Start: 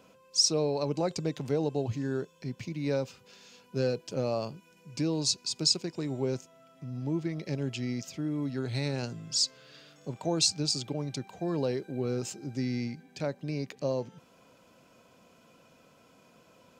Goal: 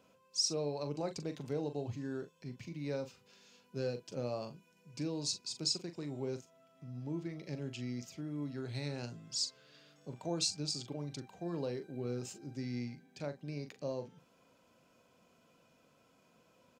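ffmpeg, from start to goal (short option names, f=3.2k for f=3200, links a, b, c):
-filter_complex "[0:a]asplit=2[a][b];[b]adelay=41,volume=-10dB[c];[a][c]amix=inputs=2:normalize=0,volume=-8.5dB"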